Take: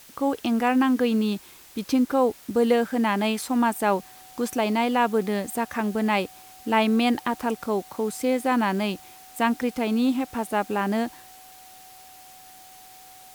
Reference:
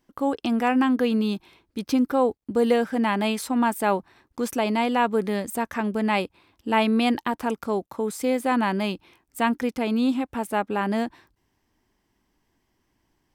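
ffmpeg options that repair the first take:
-af "bandreject=f=750:w=30,afwtdn=0.0035"

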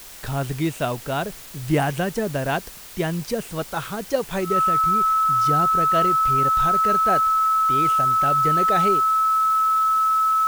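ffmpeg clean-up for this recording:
-af "bandreject=f=1.3k:w=30,afftdn=nr=28:nf=-39"

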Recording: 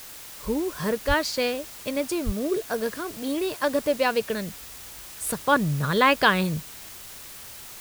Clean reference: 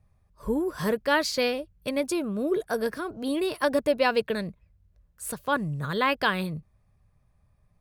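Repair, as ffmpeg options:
-filter_complex "[0:a]asplit=3[a][b][c];[a]afade=t=out:st=1.07:d=0.02[d];[b]highpass=f=140:w=0.5412,highpass=f=140:w=1.3066,afade=t=in:st=1.07:d=0.02,afade=t=out:st=1.19:d=0.02[e];[c]afade=t=in:st=1.19:d=0.02[f];[d][e][f]amix=inputs=3:normalize=0,asplit=3[g][h][i];[g]afade=t=out:st=2.25:d=0.02[j];[h]highpass=f=140:w=0.5412,highpass=f=140:w=1.3066,afade=t=in:st=2.25:d=0.02,afade=t=out:st=2.37:d=0.02[k];[i]afade=t=in:st=2.37:d=0.02[l];[j][k][l]amix=inputs=3:normalize=0,afwtdn=0.0079,asetnsamples=n=441:p=0,asendcmd='4.52 volume volume -5.5dB',volume=0dB"

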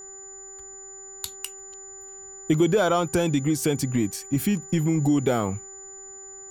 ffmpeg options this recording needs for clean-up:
-af "bandreject=f=388:t=h:w=4,bandreject=f=776:t=h:w=4,bandreject=f=1.164k:t=h:w=4,bandreject=f=1.552k:t=h:w=4,bandreject=f=1.94k:t=h:w=4,bandreject=f=7k:w=30"

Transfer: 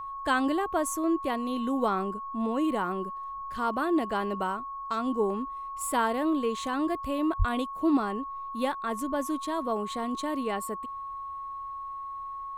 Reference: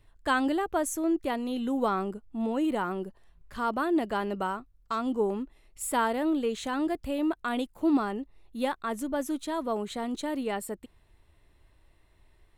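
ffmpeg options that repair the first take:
-filter_complex "[0:a]bandreject=f=1.1k:w=30,asplit=3[a][b][c];[a]afade=t=out:st=7.38:d=0.02[d];[b]highpass=f=140:w=0.5412,highpass=f=140:w=1.3066,afade=t=in:st=7.38:d=0.02,afade=t=out:st=7.5:d=0.02[e];[c]afade=t=in:st=7.5:d=0.02[f];[d][e][f]amix=inputs=3:normalize=0"

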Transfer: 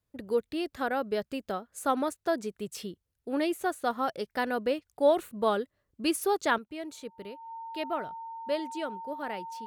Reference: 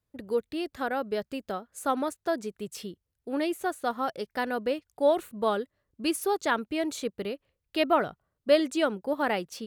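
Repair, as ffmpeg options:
-af "bandreject=f=910:w=30,asetnsamples=n=441:p=0,asendcmd='6.58 volume volume 9.5dB',volume=0dB"

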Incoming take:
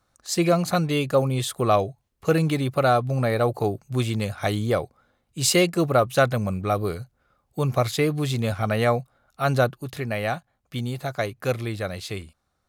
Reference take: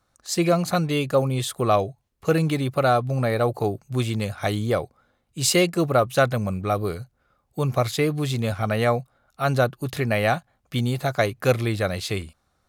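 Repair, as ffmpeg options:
-af "asetnsamples=n=441:p=0,asendcmd='9.78 volume volume 5dB',volume=0dB"

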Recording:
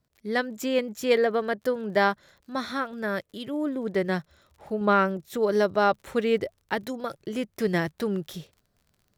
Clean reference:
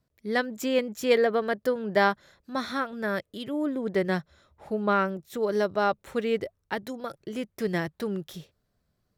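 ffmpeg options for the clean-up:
-af "adeclick=t=4,asetnsamples=n=441:p=0,asendcmd='4.81 volume volume -3dB',volume=0dB"

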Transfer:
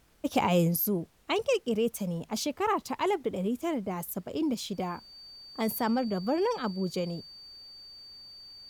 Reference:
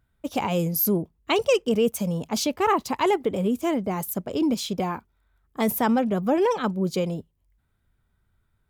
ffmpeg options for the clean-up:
-af "bandreject=f=4.6k:w=30,agate=range=-21dB:threshold=-46dB,asetnsamples=n=441:p=0,asendcmd='0.76 volume volume 6.5dB',volume=0dB"

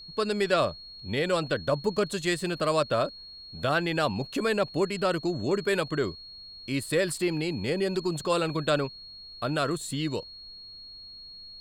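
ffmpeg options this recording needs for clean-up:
-af "bandreject=f=4.3k:w=30,agate=range=-21dB:threshold=-38dB"

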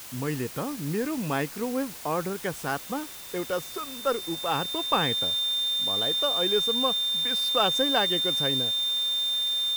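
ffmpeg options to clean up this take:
-af "bandreject=f=3.6k:w=30,afftdn=nr=30:nf=-40"

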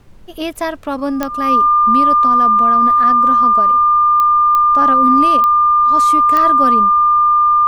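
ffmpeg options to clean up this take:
-af "adeclick=t=4,bandreject=f=1.2k:w=30,agate=range=-21dB:threshold=-15dB"

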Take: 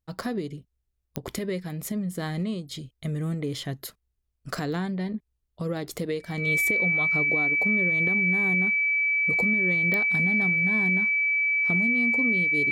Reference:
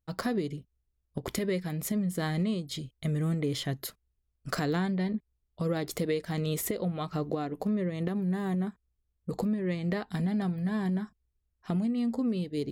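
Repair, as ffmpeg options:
-af "adeclick=t=4,bandreject=f=2.3k:w=30"

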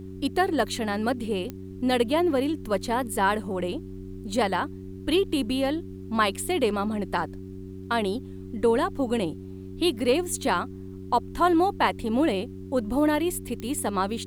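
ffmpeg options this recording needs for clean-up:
-af "adeclick=t=4,bandreject=f=94.8:t=h:w=4,bandreject=f=189.6:t=h:w=4,bandreject=f=284.4:t=h:w=4,bandreject=f=379.2:t=h:w=4,agate=range=-21dB:threshold=-31dB"

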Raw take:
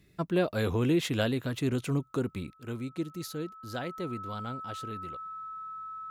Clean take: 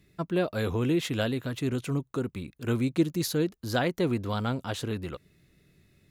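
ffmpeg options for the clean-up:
-af "bandreject=f=1.3k:w=30,asetnsamples=n=441:p=0,asendcmd='2.53 volume volume 9.5dB',volume=0dB"

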